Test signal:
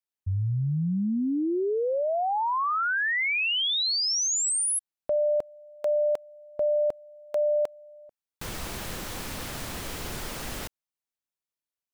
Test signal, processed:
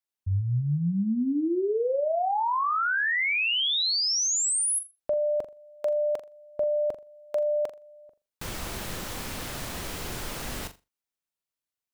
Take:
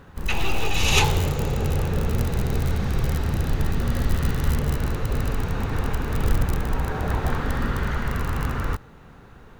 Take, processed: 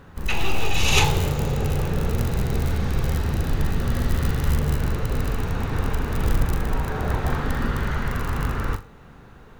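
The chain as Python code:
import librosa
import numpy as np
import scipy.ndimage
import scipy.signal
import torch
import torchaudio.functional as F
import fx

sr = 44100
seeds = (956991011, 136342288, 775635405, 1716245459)

y = fx.room_flutter(x, sr, wall_m=7.1, rt60_s=0.24)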